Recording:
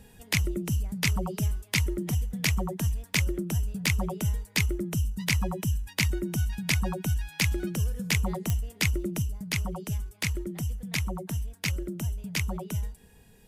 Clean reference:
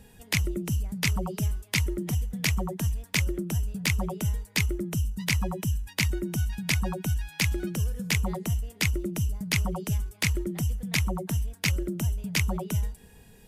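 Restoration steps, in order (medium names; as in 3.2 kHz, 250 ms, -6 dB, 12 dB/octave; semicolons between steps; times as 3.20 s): de-click; gain correction +3.5 dB, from 9.22 s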